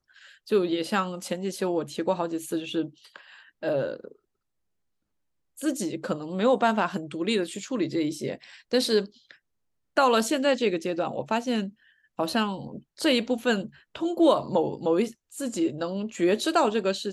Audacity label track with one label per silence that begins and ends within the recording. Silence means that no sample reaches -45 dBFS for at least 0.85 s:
4.120000	5.570000	silence